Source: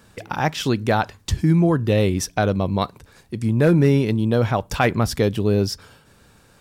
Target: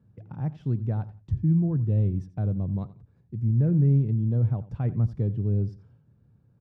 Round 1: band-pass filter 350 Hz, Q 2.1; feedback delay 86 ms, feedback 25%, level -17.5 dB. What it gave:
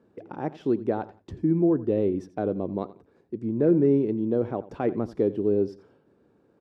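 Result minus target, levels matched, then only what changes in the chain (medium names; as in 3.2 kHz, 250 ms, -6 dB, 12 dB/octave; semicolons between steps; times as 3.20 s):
125 Hz band -11.5 dB
change: band-pass filter 120 Hz, Q 2.1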